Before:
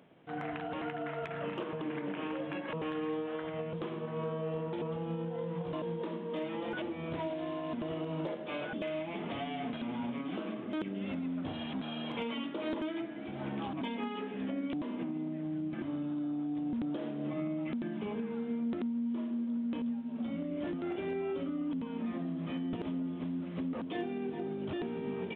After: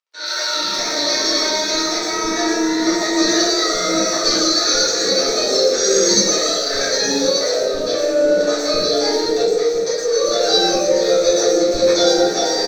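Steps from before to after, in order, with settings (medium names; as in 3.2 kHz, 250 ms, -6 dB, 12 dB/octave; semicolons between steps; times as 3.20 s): resonant high shelf 1.7 kHz +9.5 dB, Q 3; hum notches 60/120/180/240 Hz; comb 1 ms, depth 84%; level rider gain up to 16.5 dB; in parallel at +2 dB: peak limiter -21.5 dBFS, peak gain reduction 19.5 dB; on the sum: crossover distortion -39 dBFS; flange 1.1 Hz, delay 3.1 ms, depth 9.5 ms, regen +67%; three bands offset in time mids, highs, lows 230/750 ms, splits 230/3200 Hz; reverberation RT60 1.5 s, pre-delay 5 ms, DRR -8.5 dB; speed mistake 7.5 ips tape played at 15 ips; trim -4 dB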